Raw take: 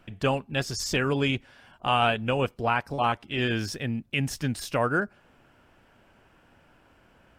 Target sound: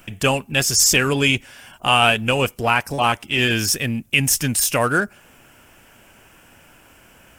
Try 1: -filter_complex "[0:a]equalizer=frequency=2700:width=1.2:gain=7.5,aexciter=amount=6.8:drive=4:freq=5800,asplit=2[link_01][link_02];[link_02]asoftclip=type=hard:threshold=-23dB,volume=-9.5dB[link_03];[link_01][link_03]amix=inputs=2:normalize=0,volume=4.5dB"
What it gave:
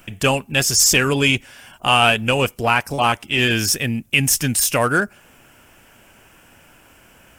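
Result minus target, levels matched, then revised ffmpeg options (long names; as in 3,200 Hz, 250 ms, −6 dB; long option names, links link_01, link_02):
hard clipping: distortion −4 dB
-filter_complex "[0:a]equalizer=frequency=2700:width=1.2:gain=7.5,aexciter=amount=6.8:drive=4:freq=5800,asplit=2[link_01][link_02];[link_02]asoftclip=type=hard:threshold=-32dB,volume=-9.5dB[link_03];[link_01][link_03]amix=inputs=2:normalize=0,volume=4.5dB"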